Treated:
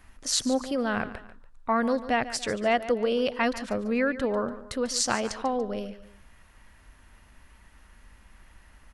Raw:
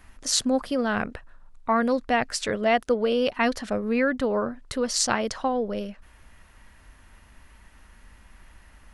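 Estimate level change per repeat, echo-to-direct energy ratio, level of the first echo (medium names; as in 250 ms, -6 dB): -7.5 dB, -14.0 dB, -14.5 dB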